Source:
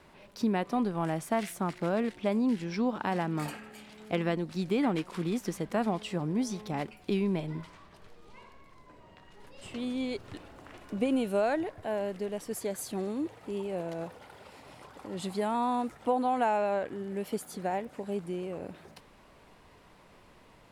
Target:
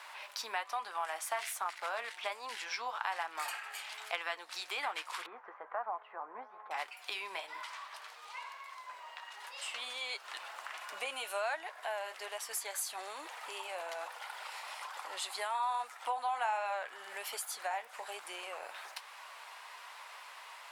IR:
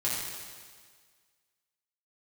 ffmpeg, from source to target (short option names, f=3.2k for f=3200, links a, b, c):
-filter_complex "[0:a]highpass=f=860:w=0.5412,highpass=f=860:w=1.3066,acompressor=threshold=-54dB:ratio=2,flanger=delay=5.7:depth=3.6:regen=-61:speed=1.2:shape=triangular,asettb=1/sr,asplit=3[a][b][c];[a]atrim=end=5.264[d];[b]atrim=start=5.26:end=6.71,asetpts=PTS-STARTPTS,afade=t=in:d=0.004:c=qsin,afade=t=out:st=1.446:d=0.004:c=qsin,lowpass=f=1.4k:w=0.5412,lowpass=f=1.4k:w=1.3066[e];[c]atrim=start=6.706[f];[d][e]acrossfade=d=0.004:c1=hsin:c2=qsin[g];[g][f]acrossfade=d=0.004:c1=qsin:c2=hsin,volume=16dB"